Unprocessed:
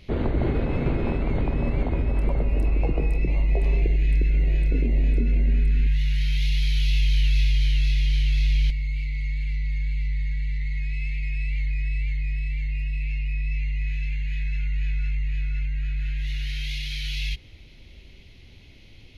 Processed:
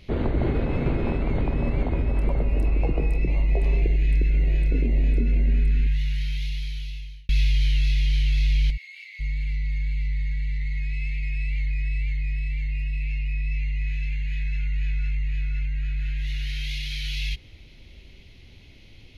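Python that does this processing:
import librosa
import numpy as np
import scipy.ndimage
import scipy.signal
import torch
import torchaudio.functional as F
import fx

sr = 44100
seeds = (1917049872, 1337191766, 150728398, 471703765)

y = fx.highpass(x, sr, hz=980.0, slope=24, at=(8.76, 9.19), fade=0.02)
y = fx.edit(y, sr, fx.fade_out_span(start_s=5.71, length_s=1.58), tone=tone)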